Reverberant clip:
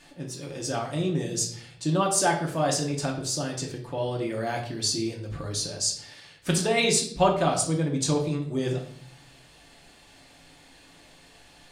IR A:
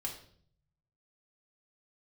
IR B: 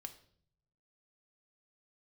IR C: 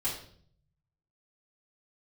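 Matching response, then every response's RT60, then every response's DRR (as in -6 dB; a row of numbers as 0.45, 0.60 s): A; 0.55, 0.60, 0.55 s; -1.5, 6.5, -10.0 dB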